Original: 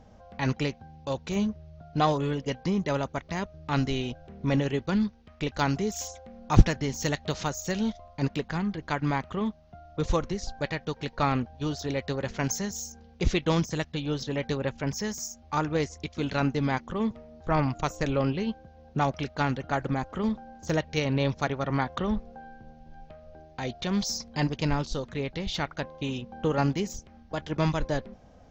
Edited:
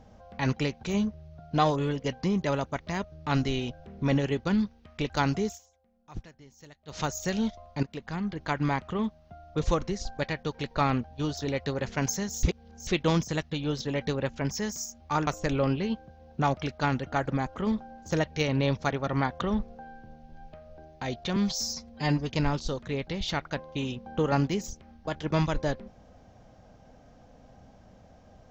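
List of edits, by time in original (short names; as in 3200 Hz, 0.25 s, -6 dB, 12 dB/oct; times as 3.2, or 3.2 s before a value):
0.83–1.25 cut
5.88–7.42 dip -23 dB, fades 0.13 s
8.25–8.81 fade in, from -14 dB
12.85–13.29 reverse
15.69–17.84 cut
23.93–24.55 stretch 1.5×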